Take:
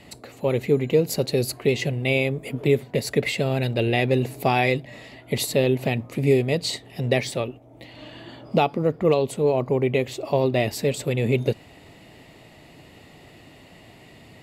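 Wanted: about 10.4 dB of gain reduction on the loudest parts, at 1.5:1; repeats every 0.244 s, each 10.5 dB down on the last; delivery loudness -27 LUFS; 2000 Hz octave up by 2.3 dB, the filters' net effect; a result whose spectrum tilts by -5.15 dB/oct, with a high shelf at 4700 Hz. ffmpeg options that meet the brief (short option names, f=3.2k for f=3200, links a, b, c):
-af "equalizer=f=2k:t=o:g=4.5,highshelf=f=4.7k:g=-8,acompressor=threshold=-44dB:ratio=1.5,aecho=1:1:244|488|732:0.299|0.0896|0.0269,volume=5.5dB"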